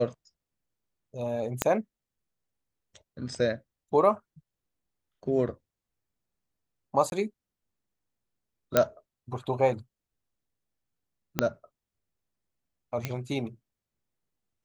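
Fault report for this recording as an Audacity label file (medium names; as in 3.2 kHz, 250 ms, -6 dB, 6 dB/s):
1.620000	1.620000	pop -8 dBFS
7.100000	7.120000	dropout 21 ms
8.770000	8.770000	pop -6 dBFS
11.390000	11.390000	pop -8 dBFS
13.050000	13.050000	pop -15 dBFS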